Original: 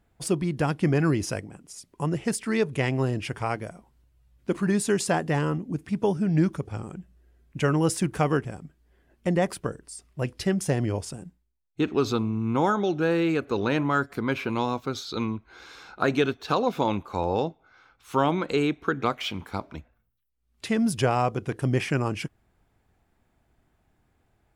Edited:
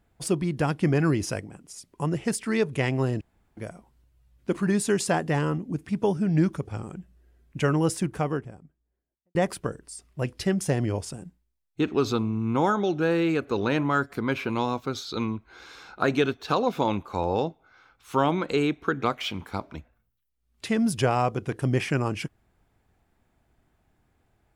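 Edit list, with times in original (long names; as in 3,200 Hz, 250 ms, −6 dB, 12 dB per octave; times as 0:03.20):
0:03.21–0:03.57: fill with room tone
0:07.58–0:09.35: fade out and dull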